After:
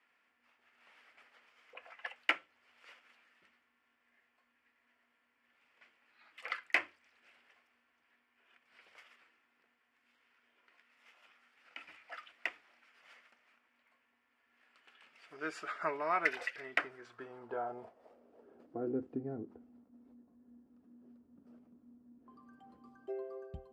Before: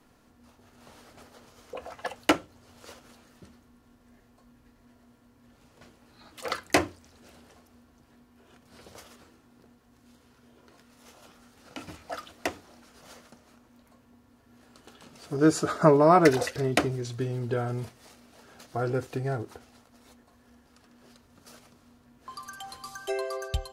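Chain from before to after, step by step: band-pass sweep 2200 Hz -> 240 Hz, 16.56–19.02; thirty-one-band EQ 125 Hz -9 dB, 4000 Hz -7 dB, 6300 Hz -7 dB, 10000 Hz -4 dB

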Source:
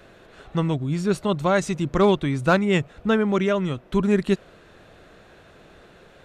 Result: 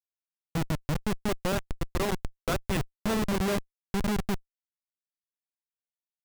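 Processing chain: 1.52–2.77 HPF 980 Hz 6 dB/oct; in parallel at +3 dB: compressor 5:1, threshold -32 dBFS, peak gain reduction 16 dB; on the sum: Schmitt trigger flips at -18 dBFS; gain -3.5 dB

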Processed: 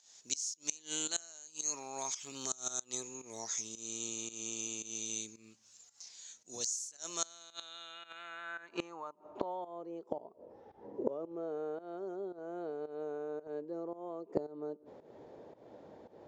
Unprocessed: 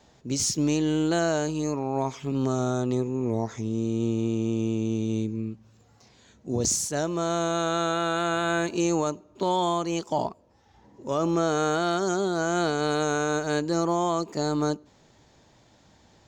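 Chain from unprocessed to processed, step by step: band-pass sweep 6600 Hz -> 470 Hz, 7.11–9.88; pump 112 bpm, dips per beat 1, -15 dB, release 0.216 s; flipped gate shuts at -31 dBFS, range -24 dB; gain +13.5 dB

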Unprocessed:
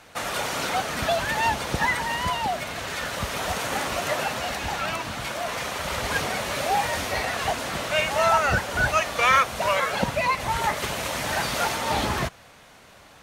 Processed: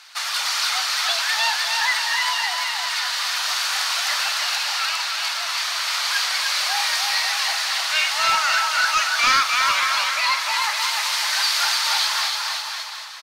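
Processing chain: HPF 1000 Hz 24 dB/oct; bouncing-ball echo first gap 0.3 s, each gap 0.85×, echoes 5; in parallel at -11 dB: soft clip -24.5 dBFS, distortion -9 dB; on the sum: flutter echo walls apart 8.4 m, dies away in 0.24 s; overloaded stage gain 14 dB; bell 4600 Hz +12 dB 0.78 oct

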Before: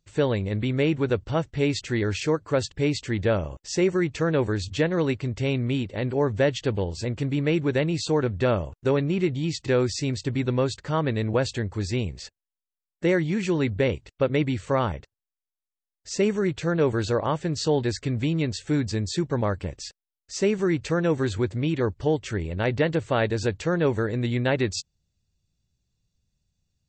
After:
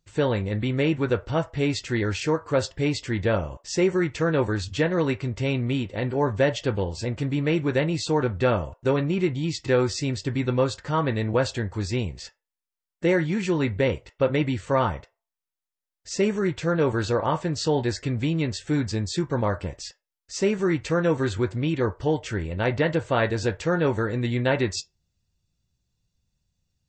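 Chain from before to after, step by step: on a send: HPF 720 Hz 24 dB/oct + reverb RT60 0.25 s, pre-delay 3 ms, DRR 4 dB

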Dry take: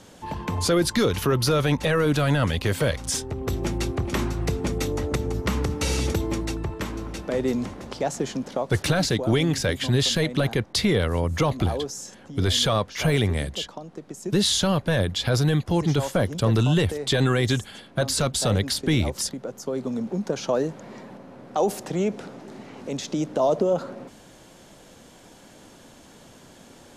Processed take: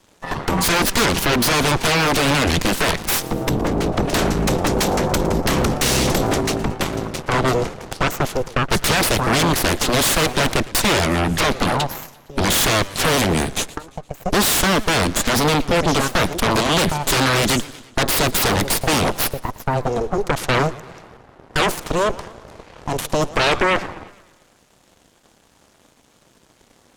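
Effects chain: added harmonics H 3 -11 dB, 5 -26 dB, 7 -31 dB, 8 -6 dB, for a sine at -11 dBFS; 3.49–3.93 high shelf 2300 Hz -12 dB; warbling echo 0.115 s, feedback 54%, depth 181 cents, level -19 dB; gain +2.5 dB

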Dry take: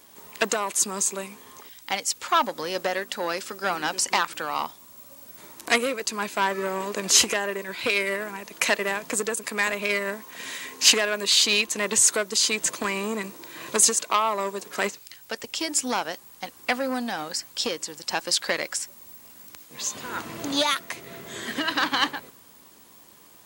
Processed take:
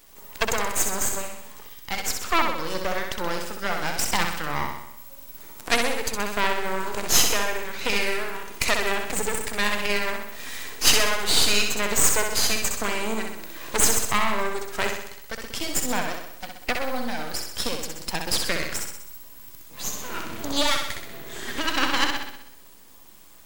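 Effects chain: bin magnitudes rounded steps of 15 dB; half-wave rectifier; flutter echo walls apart 10.9 m, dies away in 0.76 s; gain +3 dB

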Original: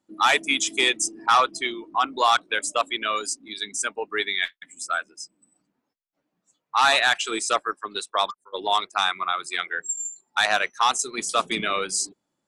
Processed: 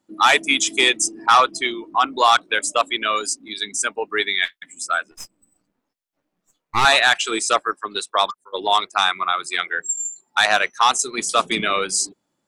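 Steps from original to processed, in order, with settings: 5.11–6.85 half-wave gain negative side -12 dB; gain +4.5 dB

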